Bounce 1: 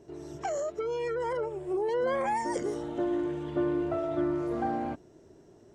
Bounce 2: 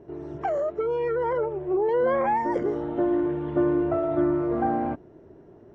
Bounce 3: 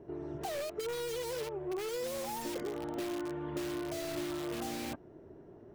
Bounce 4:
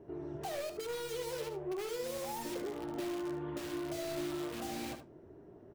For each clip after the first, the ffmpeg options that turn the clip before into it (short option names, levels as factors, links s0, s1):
-af "lowpass=1800,volume=2"
-filter_complex "[0:a]acrossover=split=810[s0][s1];[s0]acompressor=threshold=0.0224:ratio=6[s2];[s1]aeval=exprs='(mod(70.8*val(0)+1,2)-1)/70.8':c=same[s3];[s2][s3]amix=inputs=2:normalize=0,volume=0.668"
-af "flanger=delay=9.8:depth=5.6:regen=-64:speed=1.1:shape=sinusoidal,aecho=1:1:74:0.316,volume=1.26"